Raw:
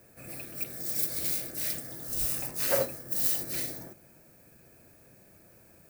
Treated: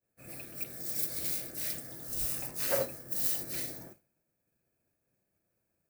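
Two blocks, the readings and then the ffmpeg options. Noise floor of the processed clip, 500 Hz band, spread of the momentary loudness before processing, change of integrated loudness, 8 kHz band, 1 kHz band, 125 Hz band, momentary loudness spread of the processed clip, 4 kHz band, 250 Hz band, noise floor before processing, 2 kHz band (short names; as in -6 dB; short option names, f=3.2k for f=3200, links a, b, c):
-82 dBFS, -3.5 dB, 13 LU, -3.5 dB, -3.5 dB, -3.5 dB, -3.5 dB, 13 LU, -3.5 dB, -3.5 dB, -58 dBFS, -3.5 dB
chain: -af "agate=range=-33dB:threshold=-44dB:ratio=3:detection=peak,volume=-3.5dB"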